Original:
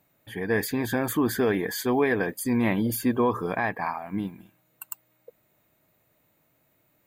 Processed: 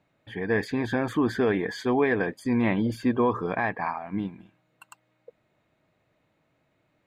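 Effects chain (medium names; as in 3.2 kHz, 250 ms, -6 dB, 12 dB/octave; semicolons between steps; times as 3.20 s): low-pass 4 kHz 12 dB/octave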